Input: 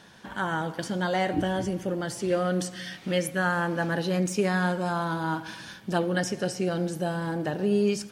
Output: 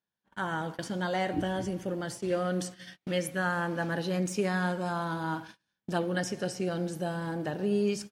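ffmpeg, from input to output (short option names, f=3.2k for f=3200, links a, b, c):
-af "agate=range=-36dB:threshold=-36dB:ratio=16:detection=peak,volume=-4dB"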